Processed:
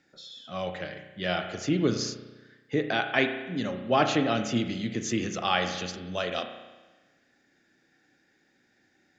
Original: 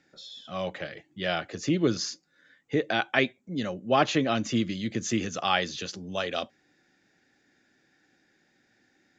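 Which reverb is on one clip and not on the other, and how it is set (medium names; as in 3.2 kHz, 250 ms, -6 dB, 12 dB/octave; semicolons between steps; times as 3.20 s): spring tank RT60 1.2 s, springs 33 ms, chirp 65 ms, DRR 6 dB; trim -1 dB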